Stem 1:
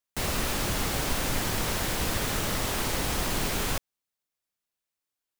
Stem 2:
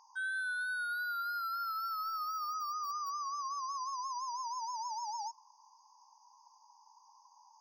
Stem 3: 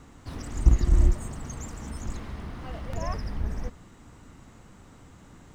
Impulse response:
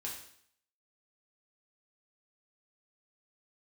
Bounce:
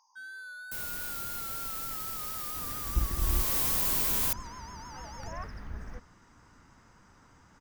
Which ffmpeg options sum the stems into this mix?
-filter_complex "[0:a]aemphasis=mode=production:type=50fm,adelay=550,volume=0.376,afade=t=in:st=3.15:d=0.42:silence=0.334965[s0];[1:a]highpass=f=1500:p=1,asoftclip=type=tanh:threshold=0.0119,volume=0.794[s1];[2:a]equalizer=f=1500:t=o:w=1.1:g=9.5,adelay=2300,volume=0.299[s2];[s0][s1][s2]amix=inputs=3:normalize=0"

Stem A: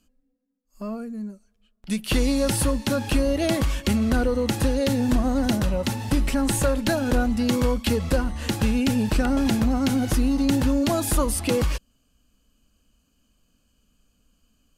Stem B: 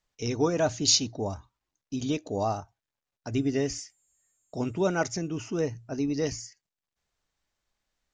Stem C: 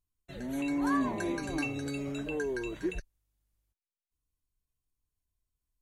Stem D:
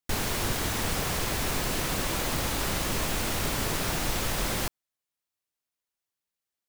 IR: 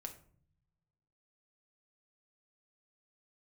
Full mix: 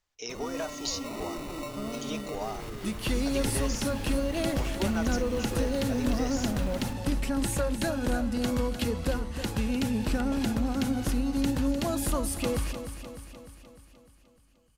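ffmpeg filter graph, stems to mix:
-filter_complex "[0:a]adelay=950,volume=0.447,asplit=2[s0][s1];[s1]volume=0.316[s2];[1:a]highpass=560,acompressor=threshold=0.0251:ratio=6,volume=1[s3];[2:a]lowpass=f=2100:t=q:w=4.3,acrusher=samples=27:mix=1:aa=0.000001,asoftclip=type=tanh:threshold=0.0376,volume=0.944,asplit=2[s4][s5];[s5]volume=0.266[s6];[3:a]bass=f=250:g=6,treble=f=4000:g=-8,adelay=2250,volume=0.376[s7];[s4][s7]amix=inputs=2:normalize=0,bandreject=f=70.82:t=h:w=4,bandreject=f=141.64:t=h:w=4,bandreject=f=212.46:t=h:w=4,bandreject=f=283.28:t=h:w=4,bandreject=f=354.1:t=h:w=4,bandreject=f=424.92:t=h:w=4,bandreject=f=495.74:t=h:w=4,bandreject=f=566.56:t=h:w=4,bandreject=f=637.38:t=h:w=4,bandreject=f=708.2:t=h:w=4,bandreject=f=779.02:t=h:w=4,bandreject=f=849.84:t=h:w=4,bandreject=f=920.66:t=h:w=4,bandreject=f=991.48:t=h:w=4,bandreject=f=1062.3:t=h:w=4,bandreject=f=1133.12:t=h:w=4,bandreject=f=1203.94:t=h:w=4,bandreject=f=1274.76:t=h:w=4,bandreject=f=1345.58:t=h:w=4,bandreject=f=1416.4:t=h:w=4,bandreject=f=1487.22:t=h:w=4,bandreject=f=1558.04:t=h:w=4,bandreject=f=1628.86:t=h:w=4,bandreject=f=1699.68:t=h:w=4,bandreject=f=1770.5:t=h:w=4,bandreject=f=1841.32:t=h:w=4,bandreject=f=1912.14:t=h:w=4,bandreject=f=1982.96:t=h:w=4,bandreject=f=2053.78:t=h:w=4,bandreject=f=2124.6:t=h:w=4,bandreject=f=2195.42:t=h:w=4,alimiter=level_in=2.24:limit=0.0631:level=0:latency=1:release=152,volume=0.447,volume=1[s8];[s2][s6]amix=inputs=2:normalize=0,aecho=0:1:302|604|906|1208|1510|1812|2114|2416|2718:1|0.57|0.325|0.185|0.106|0.0602|0.0343|0.0195|0.0111[s9];[s0][s3][s8][s9]amix=inputs=4:normalize=0"

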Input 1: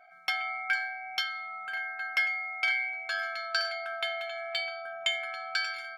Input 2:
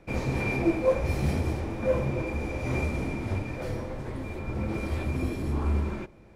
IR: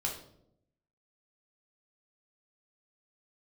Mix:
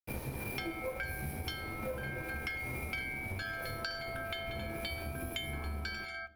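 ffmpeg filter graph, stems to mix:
-filter_complex "[0:a]adelay=300,volume=0.841,asplit=2[s0][s1];[s1]volume=0.178[s2];[1:a]aeval=exprs='sgn(val(0))*max(abs(val(0))-0.00841,0)':c=same,aexciter=amount=6.1:drive=9.6:freq=10000,volume=0.531,asplit=2[s3][s4];[s4]volume=0.2[s5];[2:a]atrim=start_sample=2205[s6];[s2][s5]amix=inputs=2:normalize=0[s7];[s7][s6]afir=irnorm=-1:irlink=0[s8];[s0][s3][s8]amix=inputs=3:normalize=0,acompressor=threshold=0.0158:ratio=6"

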